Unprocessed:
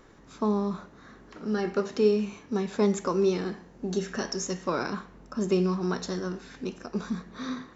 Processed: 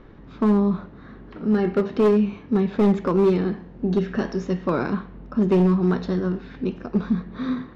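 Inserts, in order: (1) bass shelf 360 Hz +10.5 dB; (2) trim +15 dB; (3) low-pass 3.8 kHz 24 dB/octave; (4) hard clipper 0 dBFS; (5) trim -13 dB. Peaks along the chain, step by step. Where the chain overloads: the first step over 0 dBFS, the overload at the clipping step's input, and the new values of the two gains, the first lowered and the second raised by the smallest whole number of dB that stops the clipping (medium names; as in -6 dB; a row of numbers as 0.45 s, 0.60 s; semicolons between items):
-6.5 dBFS, +8.5 dBFS, +8.5 dBFS, 0.0 dBFS, -13.0 dBFS; step 2, 8.5 dB; step 2 +6 dB, step 5 -4 dB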